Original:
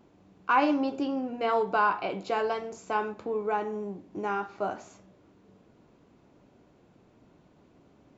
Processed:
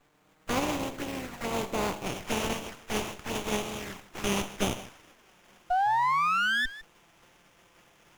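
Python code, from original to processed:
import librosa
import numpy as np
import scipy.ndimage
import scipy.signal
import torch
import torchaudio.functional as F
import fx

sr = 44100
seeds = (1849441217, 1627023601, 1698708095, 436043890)

y = fx.spec_flatten(x, sr, power=0.24)
y = fx.peak_eq(y, sr, hz=3400.0, db=fx.steps((0.0, -5.0), (2.06, 7.0), (4.24, 13.5)), octaves=1.2)
y = fx.env_flanger(y, sr, rest_ms=7.2, full_db=-27.0)
y = fx.spec_paint(y, sr, seeds[0], shape='rise', start_s=5.7, length_s=0.96, low_hz=710.0, high_hz=1800.0, level_db=-24.0)
y = y + 10.0 ** (-16.5 / 20.0) * np.pad(y, (int(156 * sr / 1000.0), 0))[:len(y)]
y = fx.running_max(y, sr, window=9)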